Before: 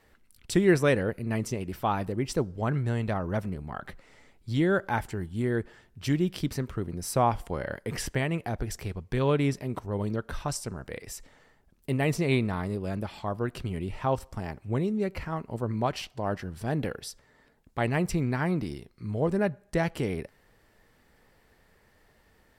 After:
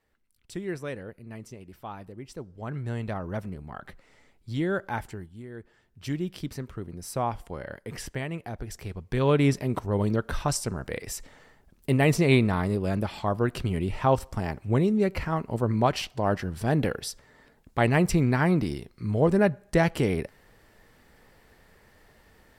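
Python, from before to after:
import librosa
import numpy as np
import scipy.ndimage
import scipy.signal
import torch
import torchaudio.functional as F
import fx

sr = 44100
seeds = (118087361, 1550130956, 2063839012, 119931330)

y = fx.gain(x, sr, db=fx.line((2.39, -12.0), (2.93, -3.0), (5.1, -3.0), (5.47, -15.0), (6.02, -4.5), (8.65, -4.5), (9.51, 5.0)))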